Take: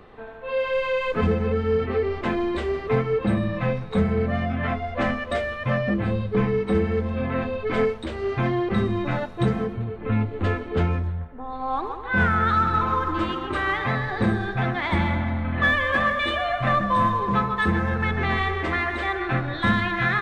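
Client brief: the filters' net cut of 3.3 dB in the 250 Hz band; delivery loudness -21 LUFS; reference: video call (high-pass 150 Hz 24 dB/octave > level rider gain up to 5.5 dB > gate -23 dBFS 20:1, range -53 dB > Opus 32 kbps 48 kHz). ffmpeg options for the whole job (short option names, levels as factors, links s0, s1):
-af "highpass=f=150:w=0.5412,highpass=f=150:w=1.3066,equalizer=f=250:t=o:g=-4,dynaudnorm=m=1.88,agate=range=0.00224:threshold=0.0708:ratio=20,volume=1.5" -ar 48000 -c:a libopus -b:a 32k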